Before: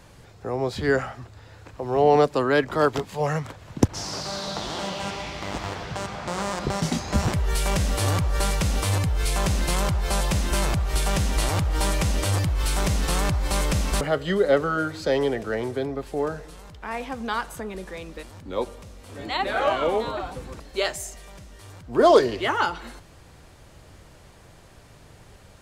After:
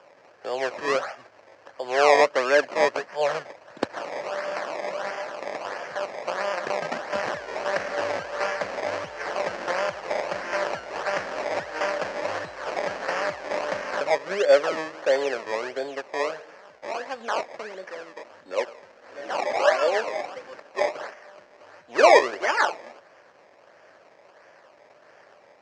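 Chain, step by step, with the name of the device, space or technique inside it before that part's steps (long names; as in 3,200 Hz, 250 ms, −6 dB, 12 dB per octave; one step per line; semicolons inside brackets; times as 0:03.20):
circuit-bent sampling toy (sample-and-hold swept by an LFO 21×, swing 100% 1.5 Hz; loudspeaker in its box 520–5,700 Hz, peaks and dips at 580 Hz +8 dB, 1,700 Hz +6 dB, 3,600 Hz −9 dB)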